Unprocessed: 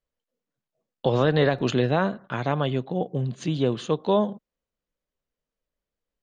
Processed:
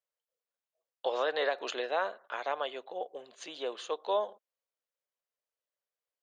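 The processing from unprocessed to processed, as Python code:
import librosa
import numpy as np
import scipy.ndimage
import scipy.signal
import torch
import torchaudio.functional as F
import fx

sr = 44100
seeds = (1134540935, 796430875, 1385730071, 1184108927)

y = scipy.signal.sosfilt(scipy.signal.butter(4, 500.0, 'highpass', fs=sr, output='sos'), x)
y = F.gain(torch.from_numpy(y), -5.5).numpy()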